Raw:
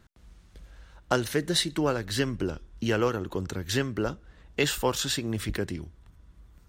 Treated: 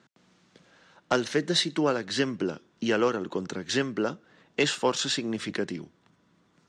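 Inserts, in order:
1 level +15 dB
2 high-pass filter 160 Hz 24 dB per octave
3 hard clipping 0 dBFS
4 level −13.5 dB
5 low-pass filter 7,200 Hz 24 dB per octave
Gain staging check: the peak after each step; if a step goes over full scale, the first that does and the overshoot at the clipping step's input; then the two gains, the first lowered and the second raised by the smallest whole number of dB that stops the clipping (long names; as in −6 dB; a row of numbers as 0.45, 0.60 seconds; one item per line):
+5.0, +5.5, 0.0, −13.5, −12.5 dBFS
step 1, 5.5 dB
step 1 +9 dB, step 4 −7.5 dB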